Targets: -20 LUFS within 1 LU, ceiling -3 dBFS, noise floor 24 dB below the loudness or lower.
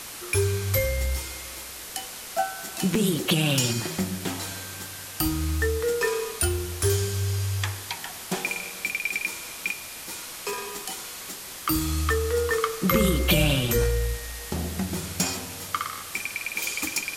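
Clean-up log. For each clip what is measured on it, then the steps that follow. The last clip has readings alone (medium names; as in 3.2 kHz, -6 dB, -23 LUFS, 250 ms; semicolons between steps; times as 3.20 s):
dropouts 1; longest dropout 2.5 ms; noise floor -39 dBFS; noise floor target -51 dBFS; loudness -27.0 LUFS; peak level -7.5 dBFS; loudness target -20.0 LUFS
-> interpolate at 2.95 s, 2.5 ms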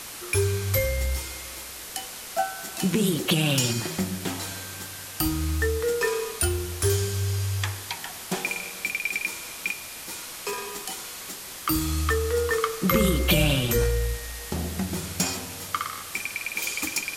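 dropouts 0; noise floor -39 dBFS; noise floor target -51 dBFS
-> noise reduction 12 dB, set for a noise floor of -39 dBFS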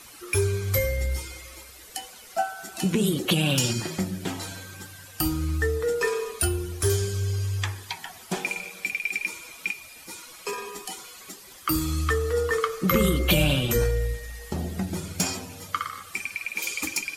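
noise floor -47 dBFS; noise floor target -51 dBFS
-> noise reduction 6 dB, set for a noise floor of -47 dBFS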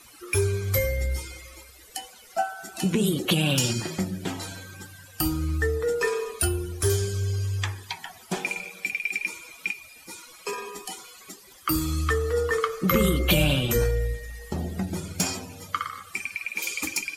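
noise floor -50 dBFS; noise floor target -51 dBFS
-> noise reduction 6 dB, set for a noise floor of -50 dBFS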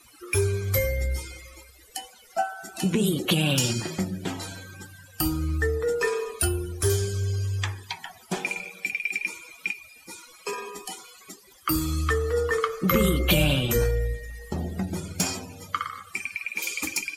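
noise floor -53 dBFS; loudness -27.0 LUFS; peak level -7.5 dBFS; loudness target -20.0 LUFS
-> trim +7 dB; peak limiter -3 dBFS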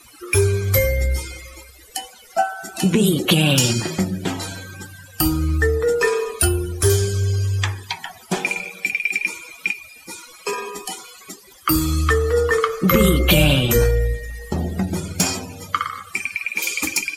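loudness -20.0 LUFS; peak level -3.0 dBFS; noise floor -46 dBFS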